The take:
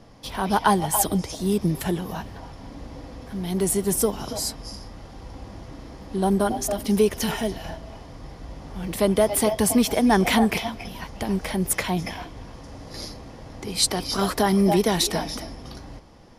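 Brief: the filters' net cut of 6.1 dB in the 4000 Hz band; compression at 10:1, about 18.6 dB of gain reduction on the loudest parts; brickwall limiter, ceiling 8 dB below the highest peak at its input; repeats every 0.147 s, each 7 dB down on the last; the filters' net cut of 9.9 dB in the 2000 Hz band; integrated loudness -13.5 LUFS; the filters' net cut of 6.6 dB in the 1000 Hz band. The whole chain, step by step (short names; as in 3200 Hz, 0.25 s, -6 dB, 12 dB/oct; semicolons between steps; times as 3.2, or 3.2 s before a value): bell 1000 Hz -7 dB; bell 2000 Hz -9 dB; bell 4000 Hz -5 dB; compressor 10:1, threshold -35 dBFS; limiter -30.5 dBFS; feedback echo 0.147 s, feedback 45%, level -7 dB; gain +26.5 dB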